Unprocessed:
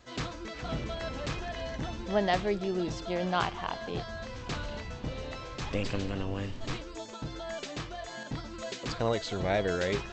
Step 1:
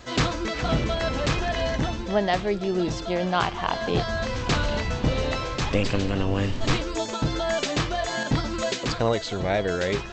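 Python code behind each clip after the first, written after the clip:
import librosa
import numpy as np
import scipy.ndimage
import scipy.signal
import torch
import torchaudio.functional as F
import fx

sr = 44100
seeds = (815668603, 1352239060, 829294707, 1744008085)

y = fx.rider(x, sr, range_db=5, speed_s=0.5)
y = y * 10.0 ** (8.5 / 20.0)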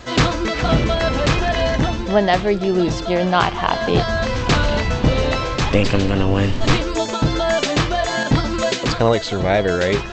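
y = fx.high_shelf(x, sr, hz=7100.0, db=-5.0)
y = y * 10.0 ** (7.5 / 20.0)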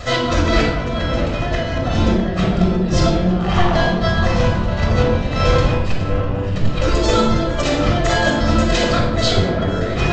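y = fx.over_compress(x, sr, threshold_db=-23.0, ratio=-0.5)
y = fx.echo_wet_lowpass(y, sr, ms=649, feedback_pct=57, hz=1600.0, wet_db=-8)
y = fx.room_shoebox(y, sr, seeds[0], volume_m3=3600.0, walls='furnished', distance_m=6.4)
y = y * 10.0 ** (-2.0 / 20.0)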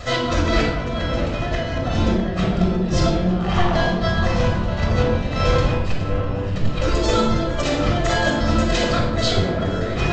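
y = x + 10.0 ** (-23.0 / 20.0) * np.pad(x, (int(907 * sr / 1000.0), 0))[:len(x)]
y = y * 10.0 ** (-3.0 / 20.0)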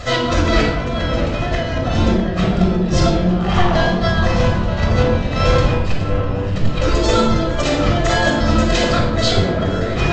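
y = fx.wow_flutter(x, sr, seeds[1], rate_hz=2.1, depth_cents=19.0)
y = y * 10.0 ** (3.5 / 20.0)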